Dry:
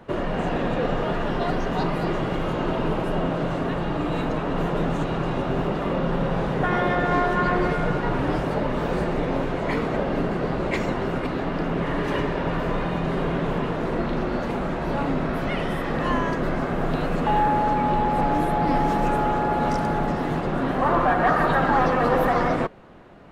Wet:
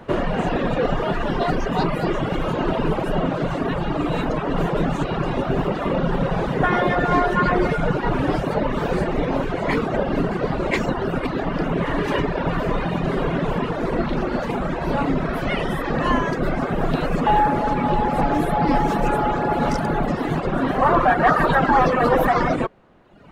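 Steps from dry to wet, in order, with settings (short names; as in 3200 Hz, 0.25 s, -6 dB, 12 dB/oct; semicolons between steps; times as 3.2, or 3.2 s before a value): reverb removal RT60 1.2 s; gain +5.5 dB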